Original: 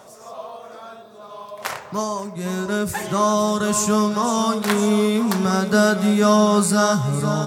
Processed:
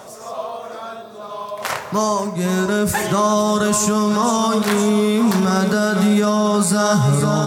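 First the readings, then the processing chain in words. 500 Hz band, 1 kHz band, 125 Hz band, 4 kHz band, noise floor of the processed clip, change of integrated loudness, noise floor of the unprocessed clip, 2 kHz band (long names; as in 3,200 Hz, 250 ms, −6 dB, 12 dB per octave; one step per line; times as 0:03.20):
+2.0 dB, +2.0 dB, +4.0 dB, +2.0 dB, −35 dBFS, +2.0 dB, −43 dBFS, +1.5 dB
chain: dense smooth reverb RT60 1.5 s, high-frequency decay 0.95×, DRR 16 dB
brickwall limiter −15 dBFS, peak gain reduction 11.5 dB
level +7 dB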